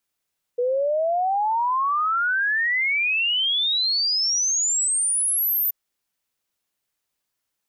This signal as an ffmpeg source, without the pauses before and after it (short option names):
-f lavfi -i "aevalsrc='0.112*clip(min(t,5.13-t)/0.01,0,1)*sin(2*PI*480*5.13/log(14000/480)*(exp(log(14000/480)*t/5.13)-1))':d=5.13:s=44100"